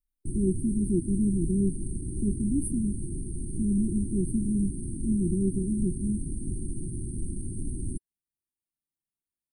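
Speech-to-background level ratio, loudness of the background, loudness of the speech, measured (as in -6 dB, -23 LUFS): 7.0 dB, -36.0 LUFS, -29.0 LUFS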